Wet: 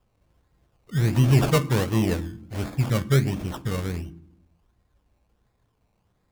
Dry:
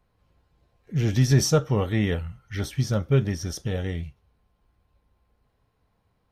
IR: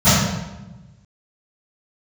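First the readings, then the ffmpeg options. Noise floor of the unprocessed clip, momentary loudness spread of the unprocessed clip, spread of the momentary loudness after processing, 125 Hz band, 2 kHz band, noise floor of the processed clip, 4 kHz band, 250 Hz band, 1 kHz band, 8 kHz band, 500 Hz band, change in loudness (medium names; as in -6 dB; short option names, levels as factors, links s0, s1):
-71 dBFS, 13 LU, 14 LU, +1.0 dB, +2.0 dB, -71 dBFS, -1.0 dB, +1.5 dB, +4.0 dB, -5.0 dB, -0.5 dB, +1.0 dB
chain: -filter_complex "[0:a]acrusher=samples=21:mix=1:aa=0.000001:lfo=1:lforange=12.6:lforate=1.4,asplit=2[s0][s1];[1:a]atrim=start_sample=2205,asetrate=74970,aresample=44100[s2];[s1][s2]afir=irnorm=-1:irlink=0,volume=0.01[s3];[s0][s3]amix=inputs=2:normalize=0"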